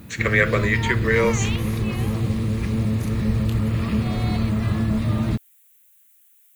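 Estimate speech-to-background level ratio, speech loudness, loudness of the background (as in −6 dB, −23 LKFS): 1.5 dB, −22.0 LKFS, −23.5 LKFS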